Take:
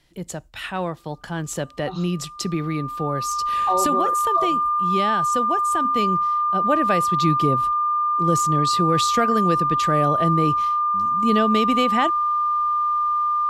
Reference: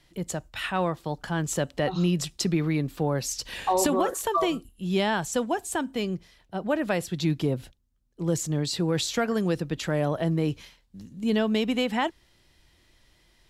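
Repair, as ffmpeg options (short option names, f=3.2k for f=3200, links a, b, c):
-af "bandreject=f=1.2k:w=30,asetnsamples=n=441:p=0,asendcmd='5.85 volume volume -4dB',volume=0dB"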